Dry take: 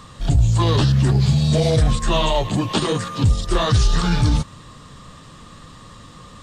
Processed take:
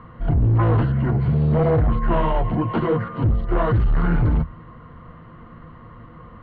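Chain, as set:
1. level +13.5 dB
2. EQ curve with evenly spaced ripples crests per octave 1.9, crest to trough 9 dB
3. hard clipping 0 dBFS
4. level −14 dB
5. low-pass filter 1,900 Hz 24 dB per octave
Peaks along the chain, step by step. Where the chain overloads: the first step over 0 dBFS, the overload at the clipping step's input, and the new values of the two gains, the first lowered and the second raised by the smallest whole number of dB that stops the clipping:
+6.5, +10.0, 0.0, −14.0, −12.5 dBFS
step 1, 10.0 dB
step 1 +3.5 dB, step 4 −4 dB

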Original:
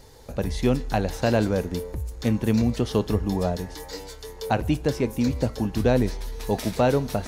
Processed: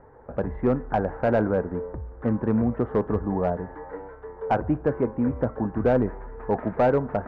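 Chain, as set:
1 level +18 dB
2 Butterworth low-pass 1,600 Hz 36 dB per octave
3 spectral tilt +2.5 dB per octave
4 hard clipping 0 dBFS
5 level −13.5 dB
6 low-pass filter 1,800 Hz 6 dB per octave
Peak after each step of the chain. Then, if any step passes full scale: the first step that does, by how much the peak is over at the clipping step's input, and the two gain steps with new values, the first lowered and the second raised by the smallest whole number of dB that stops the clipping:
+9.0, +9.0, +8.0, 0.0, −13.5, −13.5 dBFS
step 1, 8.0 dB
step 1 +10 dB, step 5 −5.5 dB

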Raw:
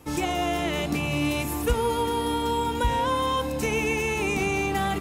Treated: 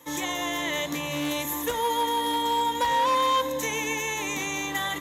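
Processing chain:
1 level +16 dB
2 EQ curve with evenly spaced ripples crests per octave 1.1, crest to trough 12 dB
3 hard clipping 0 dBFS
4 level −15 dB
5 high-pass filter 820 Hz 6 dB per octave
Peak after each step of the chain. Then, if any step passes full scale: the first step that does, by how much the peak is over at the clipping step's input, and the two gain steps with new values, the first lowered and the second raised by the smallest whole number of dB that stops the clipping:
+4.0, +6.5, 0.0, −15.0, −13.5 dBFS
step 1, 6.5 dB
step 1 +9 dB, step 4 −8 dB

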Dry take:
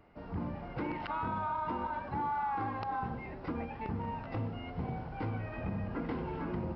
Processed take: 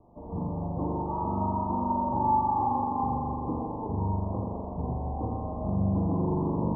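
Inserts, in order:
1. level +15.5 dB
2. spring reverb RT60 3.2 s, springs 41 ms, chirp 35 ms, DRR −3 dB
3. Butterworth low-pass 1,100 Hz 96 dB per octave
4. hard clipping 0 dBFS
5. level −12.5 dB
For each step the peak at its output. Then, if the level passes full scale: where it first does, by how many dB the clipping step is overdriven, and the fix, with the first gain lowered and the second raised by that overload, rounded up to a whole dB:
−7.0, −2.5, −2.0, −2.0, −14.5 dBFS
no step passes full scale

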